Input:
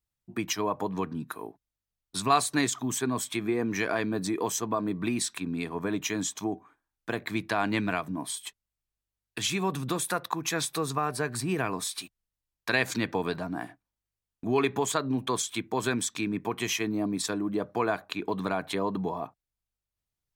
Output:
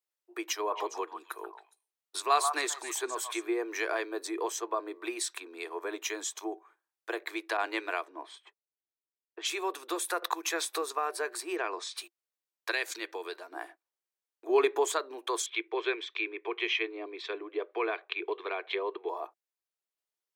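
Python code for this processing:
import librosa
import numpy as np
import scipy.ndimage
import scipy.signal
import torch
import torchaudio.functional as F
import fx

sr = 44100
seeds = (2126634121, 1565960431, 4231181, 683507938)

y = fx.echo_stepped(x, sr, ms=137, hz=980.0, octaves=1.4, feedback_pct=70, wet_db=-4.5, at=(0.7, 3.45), fade=0.02)
y = fx.high_shelf(y, sr, hz=8300.0, db=-8.0, at=(4.35, 4.92))
y = fx.env_lowpass(y, sr, base_hz=380.0, full_db=-25.0, at=(7.57, 9.48))
y = fx.band_squash(y, sr, depth_pct=70, at=(10.22, 10.82))
y = fx.lowpass(y, sr, hz=6400.0, slope=24, at=(11.56, 11.97))
y = fx.peak_eq(y, sr, hz=720.0, db=-7.5, octaves=2.6, at=(12.71, 13.52))
y = fx.low_shelf(y, sr, hz=420.0, db=10.5, at=(14.49, 14.95))
y = fx.cabinet(y, sr, low_hz=340.0, low_slope=12, high_hz=3600.0, hz=(400.0, 600.0, 870.0, 1400.0, 2300.0, 3300.0), db=(6, -5, -5, -4, 8, 5), at=(15.46, 19.09))
y = scipy.signal.sosfilt(scipy.signal.cheby1(6, 1.0, 340.0, 'highpass', fs=sr, output='sos'), y)
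y = y * librosa.db_to_amplitude(-2.0)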